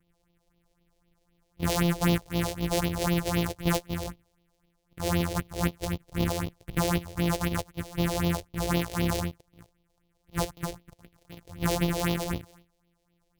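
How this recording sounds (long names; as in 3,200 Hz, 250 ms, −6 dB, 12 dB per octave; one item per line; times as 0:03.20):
a buzz of ramps at a fixed pitch in blocks of 256 samples
phaser sweep stages 4, 3.9 Hz, lowest notch 200–1,600 Hz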